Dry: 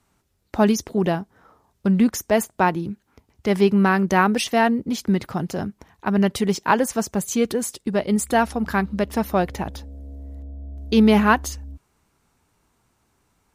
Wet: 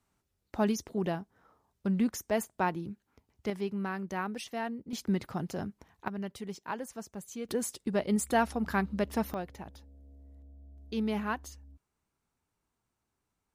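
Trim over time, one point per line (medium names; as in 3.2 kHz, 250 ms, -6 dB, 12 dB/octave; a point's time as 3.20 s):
-11 dB
from 3.50 s -17.5 dB
from 4.93 s -9.5 dB
from 6.08 s -19 dB
from 7.49 s -8 dB
from 9.34 s -17 dB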